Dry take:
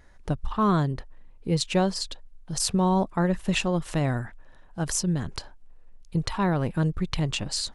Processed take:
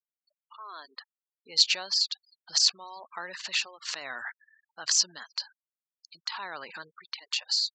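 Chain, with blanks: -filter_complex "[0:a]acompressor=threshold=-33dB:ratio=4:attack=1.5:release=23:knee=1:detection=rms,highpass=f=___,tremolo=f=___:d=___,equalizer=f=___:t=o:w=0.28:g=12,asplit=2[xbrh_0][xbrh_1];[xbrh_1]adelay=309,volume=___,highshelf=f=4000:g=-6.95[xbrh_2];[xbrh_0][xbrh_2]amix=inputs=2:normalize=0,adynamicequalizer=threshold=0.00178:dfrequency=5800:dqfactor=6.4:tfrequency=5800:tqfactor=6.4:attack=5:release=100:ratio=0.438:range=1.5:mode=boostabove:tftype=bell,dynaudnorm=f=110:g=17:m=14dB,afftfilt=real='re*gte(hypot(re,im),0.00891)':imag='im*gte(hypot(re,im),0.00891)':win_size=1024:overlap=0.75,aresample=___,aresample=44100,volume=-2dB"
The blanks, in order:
1300, 1.2, 0.61, 4500, -29dB, 16000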